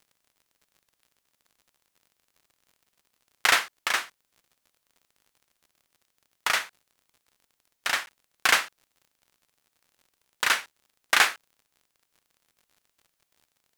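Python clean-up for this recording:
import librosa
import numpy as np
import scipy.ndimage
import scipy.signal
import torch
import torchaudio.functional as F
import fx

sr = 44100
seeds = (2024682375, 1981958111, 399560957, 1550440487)

y = fx.fix_declick_ar(x, sr, threshold=6.5)
y = fx.fix_interpolate(y, sr, at_s=(8.06,), length_ms=11.0)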